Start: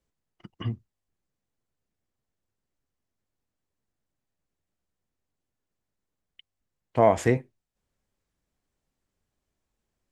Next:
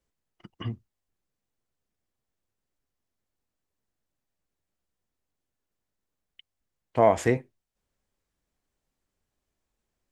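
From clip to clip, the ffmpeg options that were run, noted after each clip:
ffmpeg -i in.wav -af "equalizer=frequency=130:width_type=o:width=1.9:gain=-3" out.wav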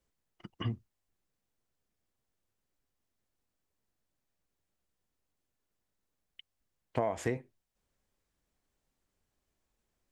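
ffmpeg -i in.wav -af "acompressor=threshold=-28dB:ratio=8" out.wav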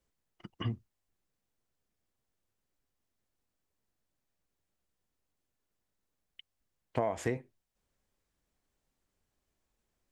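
ffmpeg -i in.wav -af anull out.wav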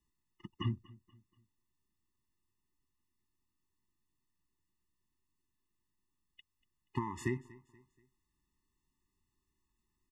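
ffmpeg -i in.wav -af "aecho=1:1:239|478|717:0.0794|0.0326|0.0134,afftfilt=real='re*eq(mod(floor(b*sr/1024/420),2),0)':imag='im*eq(mod(floor(b*sr/1024/420),2),0)':win_size=1024:overlap=0.75" out.wav

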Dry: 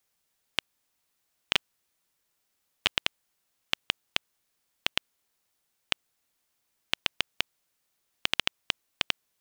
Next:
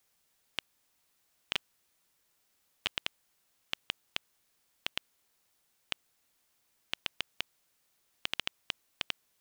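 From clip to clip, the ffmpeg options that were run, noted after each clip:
ffmpeg -i in.wav -af "alimiter=limit=-14.5dB:level=0:latency=1:release=13,volume=3dB" out.wav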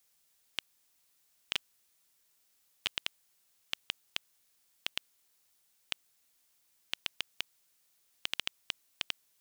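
ffmpeg -i in.wav -af "highshelf=frequency=2800:gain=8,volume=-4.5dB" out.wav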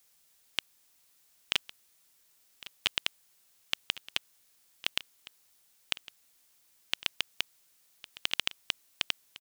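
ffmpeg -i in.wav -af "aecho=1:1:1107:0.126,volume=5dB" out.wav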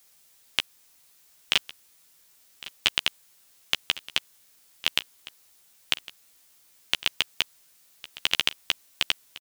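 ffmpeg -i in.wav -filter_complex "[0:a]asplit=2[link_01][link_02];[link_02]adelay=13,volume=-6.5dB[link_03];[link_01][link_03]amix=inputs=2:normalize=0,volume=6dB" out.wav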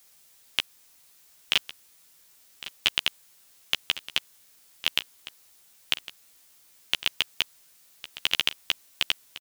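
ffmpeg -i in.wav -af "asoftclip=type=tanh:threshold=-5dB,volume=1.5dB" out.wav

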